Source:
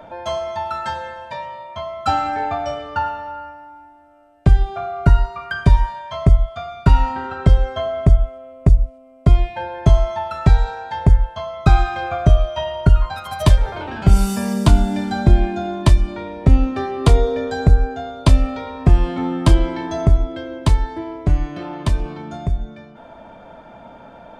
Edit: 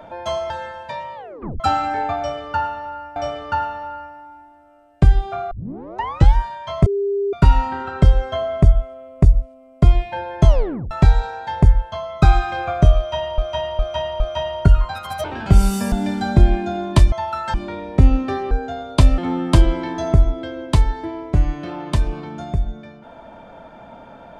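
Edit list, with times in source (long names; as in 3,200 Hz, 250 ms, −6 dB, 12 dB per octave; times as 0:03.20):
0:00.50–0:00.92: move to 0:16.02
0:01.57: tape stop 0.45 s
0:02.60–0:03.58: repeat, 2 plays
0:04.95: tape start 0.85 s
0:06.30–0:06.77: beep over 400 Hz −17.5 dBFS
0:09.92: tape stop 0.43 s
0:12.41–0:12.82: repeat, 4 plays
0:13.45–0:13.80: remove
0:14.48–0:14.82: remove
0:16.99–0:17.79: remove
0:18.46–0:19.11: remove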